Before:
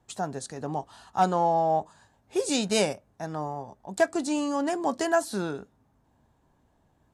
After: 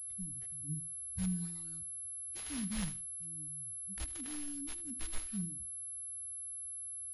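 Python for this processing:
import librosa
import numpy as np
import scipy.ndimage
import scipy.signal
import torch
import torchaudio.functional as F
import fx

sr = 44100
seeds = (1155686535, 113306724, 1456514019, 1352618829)

p1 = scipy.ndimage.median_filter(x, 25, mode='constant')
p2 = fx.noise_reduce_blind(p1, sr, reduce_db=17)
p3 = scipy.signal.sosfilt(scipy.signal.cheby2(4, 70, [400.0, 3000.0], 'bandstop', fs=sr, output='sos'), p2)
p4 = fx.small_body(p3, sr, hz=(290.0, 450.0), ring_ms=25, db=10)
p5 = p4 + fx.echo_feedback(p4, sr, ms=77, feedback_pct=23, wet_db=-15, dry=0)
p6 = fx.pwm(p5, sr, carrier_hz=11000.0)
y = F.gain(torch.from_numpy(p6), 15.5).numpy()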